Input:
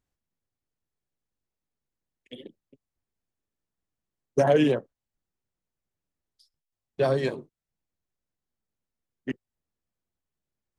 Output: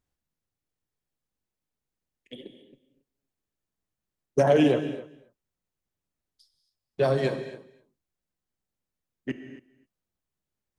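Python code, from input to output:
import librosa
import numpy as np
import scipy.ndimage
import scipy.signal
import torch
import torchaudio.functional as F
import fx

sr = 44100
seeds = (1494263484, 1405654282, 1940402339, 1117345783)

y = x + 10.0 ** (-20.0 / 20.0) * np.pad(x, (int(278 * sr / 1000.0), 0))[:len(x)]
y = fx.rev_gated(y, sr, seeds[0], gate_ms=280, shape='flat', drr_db=8.5)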